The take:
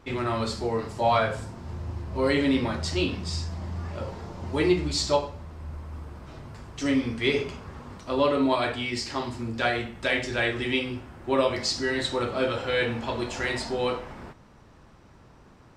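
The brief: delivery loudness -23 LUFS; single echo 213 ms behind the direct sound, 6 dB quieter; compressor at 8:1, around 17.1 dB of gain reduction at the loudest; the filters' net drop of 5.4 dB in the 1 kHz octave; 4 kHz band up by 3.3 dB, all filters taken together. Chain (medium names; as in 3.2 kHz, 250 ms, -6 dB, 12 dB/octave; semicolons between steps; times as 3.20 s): peaking EQ 1 kHz -7.5 dB; peaking EQ 4 kHz +4.5 dB; compression 8:1, threshold -37 dBFS; delay 213 ms -6 dB; trim +16.5 dB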